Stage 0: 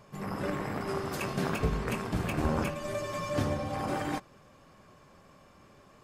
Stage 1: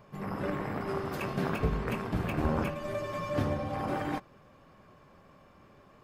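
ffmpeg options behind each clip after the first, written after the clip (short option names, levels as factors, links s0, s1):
-af "equalizer=f=7800:w=0.67:g=-10"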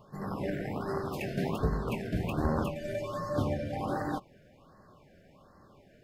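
-af "afftfilt=real='re*(1-between(b*sr/1024,980*pow(2900/980,0.5+0.5*sin(2*PI*1.3*pts/sr))/1.41,980*pow(2900/980,0.5+0.5*sin(2*PI*1.3*pts/sr))*1.41))':imag='im*(1-between(b*sr/1024,980*pow(2900/980,0.5+0.5*sin(2*PI*1.3*pts/sr))/1.41,980*pow(2900/980,0.5+0.5*sin(2*PI*1.3*pts/sr))*1.41))':win_size=1024:overlap=0.75"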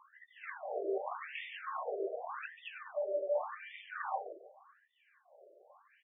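-filter_complex "[0:a]asplit=2[s0][s1];[s1]adelay=144,lowpass=f=3900:p=1,volume=0.631,asplit=2[s2][s3];[s3]adelay=144,lowpass=f=3900:p=1,volume=0.26,asplit=2[s4][s5];[s5]adelay=144,lowpass=f=3900:p=1,volume=0.26,asplit=2[s6][s7];[s7]adelay=144,lowpass=f=3900:p=1,volume=0.26[s8];[s0][s2][s4][s6][s8]amix=inputs=5:normalize=0,afftfilt=real='re*between(b*sr/1024,480*pow(2600/480,0.5+0.5*sin(2*PI*0.86*pts/sr))/1.41,480*pow(2600/480,0.5+0.5*sin(2*PI*0.86*pts/sr))*1.41)':imag='im*between(b*sr/1024,480*pow(2600/480,0.5+0.5*sin(2*PI*0.86*pts/sr))/1.41,480*pow(2600/480,0.5+0.5*sin(2*PI*0.86*pts/sr))*1.41)':win_size=1024:overlap=0.75,volume=1.26"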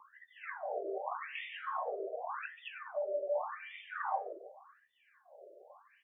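-filter_complex "[0:a]acrossover=split=670|930[s0][s1][s2];[s0]acompressor=threshold=0.00398:ratio=5[s3];[s2]flanger=delay=8.6:depth=7.7:regen=81:speed=0.42:shape=sinusoidal[s4];[s3][s1][s4]amix=inputs=3:normalize=0,volume=1.78"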